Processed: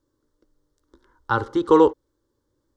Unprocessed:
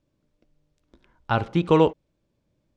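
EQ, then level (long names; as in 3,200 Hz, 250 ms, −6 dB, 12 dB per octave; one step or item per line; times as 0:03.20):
low-shelf EQ 130 Hz −6 dB
phaser with its sweep stopped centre 670 Hz, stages 6
+5.5 dB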